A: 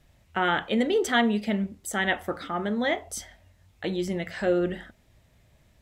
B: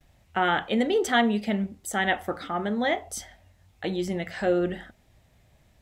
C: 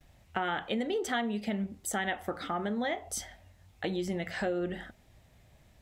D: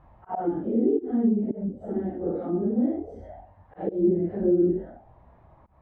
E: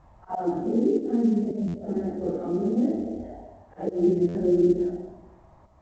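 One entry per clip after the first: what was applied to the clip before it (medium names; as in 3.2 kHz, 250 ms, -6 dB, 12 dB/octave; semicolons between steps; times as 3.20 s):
gate with hold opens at -58 dBFS; peaking EQ 770 Hz +5.5 dB 0.2 oct
compression 4:1, threshold -30 dBFS, peak gain reduction 11.5 dB
phase randomisation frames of 200 ms; slow attack 161 ms; touch-sensitive low-pass 320–1100 Hz down, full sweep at -31 dBFS; trim +5.5 dB
on a send at -8 dB: reverberation RT60 0.80 s, pre-delay 110 ms; on the sum: buffer glitch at 1.67/4.28 s, samples 512, times 5; µ-law 128 kbps 16 kHz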